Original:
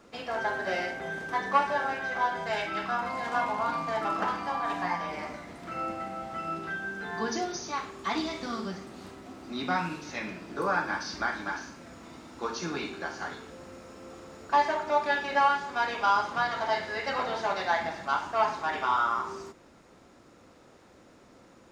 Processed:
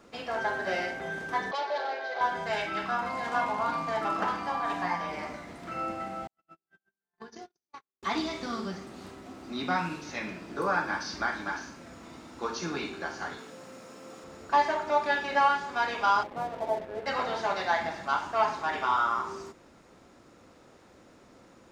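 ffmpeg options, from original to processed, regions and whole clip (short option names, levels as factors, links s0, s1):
-filter_complex "[0:a]asettb=1/sr,asplit=3[s0][s1][s2];[s0]atrim=end=1.514[s3];[s1]atrim=start=1.51:end=2.21,asetpts=PTS-STARTPTS,afade=t=in:d=0.004:c=qsin,afade=t=out:st=0.696:d=0.004:c=qsin,asoftclip=type=hard:threshold=0.0398,highpass=f=390:w=0.5412,highpass=f=390:w=1.3066,equalizer=f=450:t=q:w=4:g=4,equalizer=f=660:t=q:w=4:g=5,equalizer=f=1200:t=q:w=4:g=-7,equalizer=f=1700:t=q:w=4:g=-4,equalizer=f=2700:t=q:w=4:g=-7,equalizer=f=4300:t=q:w=4:g=5,lowpass=f=5200:w=0.5412,lowpass=f=5200:w=1.3066[s4];[s2]atrim=start=2.206[s5];[s3][s4]acrossfade=d=0.004:c1=hsin:c2=qsin[s6];[s6][s5]acrossfade=d=0.004:c1=qsin:c2=hsin,asettb=1/sr,asplit=3[s7][s8][s9];[s7]atrim=end=6.274[s10];[s8]atrim=start=6.27:end=8.03,asetpts=PTS-STARTPTS,afade=t=in:d=0.004:c=qsin,afade=t=out:st=1.756:d=0.004:c=qsin,agate=range=0.00112:threshold=0.0316:ratio=16:release=100:detection=peak,acompressor=threshold=0.01:ratio=16:attack=3.2:release=140:knee=1:detection=peak[s11];[s9]atrim=start=8.026[s12];[s10][s11]acrossfade=d=0.004:c1=hsin:c2=qsin[s13];[s13][s12]acrossfade=d=0.004:c1=qsin:c2=hsin,asettb=1/sr,asplit=3[s14][s15][s16];[s14]atrim=end=13.384[s17];[s15]atrim=start=13.38:end=14.24,asetpts=PTS-STARTPTS,afade=t=in:d=0.004:c=qsin,afade=t=out:st=0.856:d=0.004:c=qsin,highpass=f=120:w=0.5412,highpass=f=120:w=1.3066,highshelf=f=5000:g=4.5,bandreject=f=50:t=h:w=6,bandreject=f=100:t=h:w=6,bandreject=f=150:t=h:w=6,bandreject=f=200:t=h:w=6,bandreject=f=250:t=h:w=6,bandreject=f=300:t=h:w=6,bandreject=f=350:t=h:w=6,bandreject=f=400:t=h:w=6[s18];[s16]atrim=start=14.236[s19];[s17][s18]acrossfade=d=0.004:c1=hsin:c2=qsin[s20];[s20][s19]acrossfade=d=0.004:c1=qsin:c2=hsin,asettb=1/sr,asplit=3[s21][s22][s23];[s21]atrim=end=16.234[s24];[s22]atrim=start=16.23:end=17.06,asetpts=PTS-STARTPTS,afade=t=in:d=0.004:c=qsin,afade=t=out:st=0.826:d=0.004:c=qsin,lowpass=f=580:t=q:w=1.6,aeval=exprs='sgn(val(0))*max(abs(val(0))-0.00596,0)':c=same[s25];[s23]atrim=start=17.056[s26];[s24][s25]acrossfade=d=0.004:c1=hsin:c2=qsin[s27];[s27][s26]acrossfade=d=0.004:c1=qsin:c2=hsin"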